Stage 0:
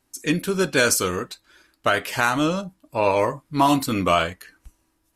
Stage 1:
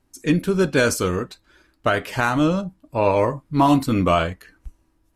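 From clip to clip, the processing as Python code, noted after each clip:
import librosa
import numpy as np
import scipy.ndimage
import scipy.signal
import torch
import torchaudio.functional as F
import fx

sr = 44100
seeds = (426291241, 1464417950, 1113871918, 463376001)

y = fx.tilt_eq(x, sr, slope=-2.0)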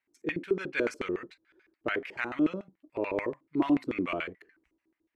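y = fx.filter_lfo_bandpass(x, sr, shape='square', hz=6.9, low_hz=360.0, high_hz=2100.0, q=4.3)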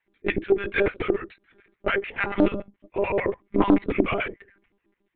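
y = fx.lpc_monotone(x, sr, seeds[0], pitch_hz=200.0, order=16)
y = fx.doppler_dist(y, sr, depth_ms=0.33)
y = F.gain(torch.from_numpy(y), 7.0).numpy()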